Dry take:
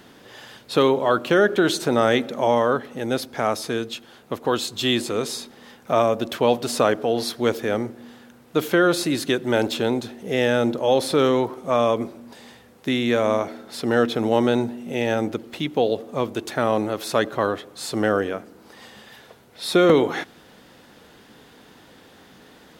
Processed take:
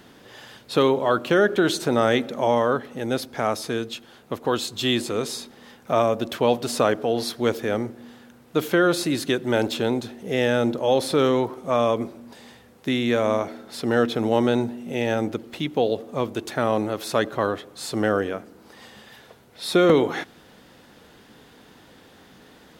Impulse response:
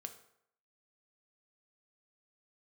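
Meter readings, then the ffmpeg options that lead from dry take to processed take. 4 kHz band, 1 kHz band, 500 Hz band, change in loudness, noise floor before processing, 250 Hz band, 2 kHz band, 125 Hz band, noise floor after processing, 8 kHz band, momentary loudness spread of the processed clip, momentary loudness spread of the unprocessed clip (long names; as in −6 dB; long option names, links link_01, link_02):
−1.5 dB, −1.5 dB, −1.5 dB, −1.0 dB, −50 dBFS, −1.0 dB, −1.5 dB, 0.0 dB, −51 dBFS, −1.5 dB, 10 LU, 10 LU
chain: -af "lowshelf=frequency=140:gain=3,volume=-1.5dB"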